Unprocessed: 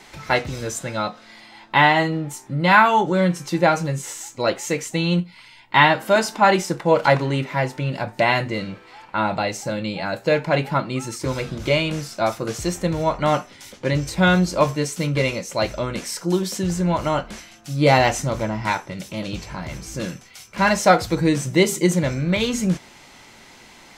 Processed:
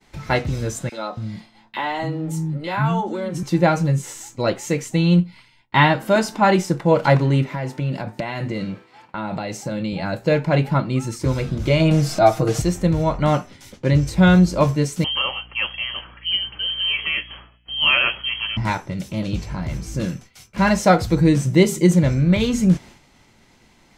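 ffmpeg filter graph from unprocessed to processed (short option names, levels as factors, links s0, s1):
-filter_complex "[0:a]asettb=1/sr,asplit=3[s0][s1][s2];[s0]atrim=end=0.894[s3];[s1]atrim=start=0.89:end=3.43,asetpts=PTS-STARTPTS,afade=t=in:d=0.004:c=qsin,afade=t=out:st=2.536:d=0.004:c=qsin,acompressor=threshold=0.0891:ratio=2.5:attack=3.2:release=140:knee=1:detection=peak,acrossover=split=270|1800[s4][s5][s6];[s5]adelay=30[s7];[s4]adelay=280[s8];[s8][s7][s6]amix=inputs=3:normalize=0,atrim=end_sample=112014[s9];[s2]atrim=start=3.426[s10];[s3][s9]acrossfade=d=0.004:c1=hsin:c2=qsin[s11];[s11][s10]acrossfade=d=0.004:c1=qsin:c2=hsin,asettb=1/sr,asplit=3[s12][s13][s14];[s12]atrim=end=7.494[s15];[s13]atrim=start=7.49:end=9.93,asetpts=PTS-STARTPTS,afade=t=in:d=0.004:c=qsin,afade=t=out:st=2.436:d=0.004:c=qsin,highpass=130,acompressor=threshold=0.0708:ratio=5:attack=3.2:release=140:knee=1:detection=peak[s16];[s14]atrim=start=9.926[s17];[s15][s16]acrossfade=d=0.004:c1=hsin:c2=qsin[s18];[s18][s17]acrossfade=d=0.004:c1=qsin:c2=hsin,asettb=1/sr,asplit=3[s19][s20][s21];[s19]atrim=end=11.804[s22];[s20]atrim=start=11.8:end=12.62,asetpts=PTS-STARTPTS,afade=t=in:d=0.004:c=qsin,afade=t=out:st=0.816:d=0.004:c=qsin,equalizer=f=700:w=3.7:g=9.5,aecho=1:1:6.4:0.82,atrim=end_sample=36162,acompressor=mode=upward:threshold=0.158:ratio=2.5:attack=3.2:release=140:knee=2.83:detection=peak[s23];[s21]atrim=start=12.616[s24];[s22][s23]acrossfade=d=0.004:c1=hsin:c2=qsin[s25];[s25][s24]acrossfade=d=0.004:c1=qsin:c2=hsin,asettb=1/sr,asplit=3[s26][s27][s28];[s26]atrim=end=15.044[s29];[s27]atrim=start=15.04:end=18.57,asetpts=PTS-STARTPTS,afade=t=in:d=0.004:c=qsin,afade=t=out:st=3.526:d=0.004:c=qsin,lowpass=f=2800:t=q:w=0.5098,lowpass=f=2800:t=q:w=0.6013,lowpass=f=2800:t=q:w=0.9,lowpass=f=2800:t=q:w=2.563,afreqshift=-3300,aeval=exprs='val(0)+0.00224*(sin(2*PI*60*n/s)+sin(2*PI*2*60*n/s)/2+sin(2*PI*3*60*n/s)/3+sin(2*PI*4*60*n/s)/4+sin(2*PI*5*60*n/s)/5)':c=same[s30];[s28]atrim=start=18.566[s31];[s29][s30]acrossfade=d=0.004:c1=hsin:c2=qsin[s32];[s32][s31]acrossfade=d=0.004:c1=qsin:c2=hsin,agate=range=0.0224:threshold=0.0112:ratio=3:detection=peak,lowshelf=f=280:g=11.5,volume=0.75"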